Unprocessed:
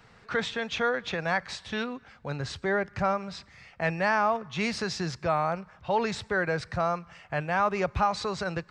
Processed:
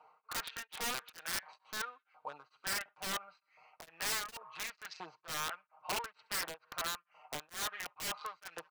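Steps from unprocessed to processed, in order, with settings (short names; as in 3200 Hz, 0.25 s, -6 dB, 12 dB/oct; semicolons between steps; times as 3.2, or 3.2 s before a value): Wiener smoothing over 25 samples; treble ducked by the level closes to 2600 Hz, closed at -24 dBFS; comb 6.5 ms, depth 76%; in parallel at +1 dB: limiter -23 dBFS, peak gain reduction 11.5 dB; on the sum: compressor 2:1, threshold -24 dBFS, peak gain reduction 5 dB; thin delay 67 ms, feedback 52%, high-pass 1600 Hz, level -22 dB; LFO high-pass saw up 1.4 Hz 830–1900 Hz; wrapped overs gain 21.5 dB; beating tremolo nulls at 2.2 Hz; gain -8 dB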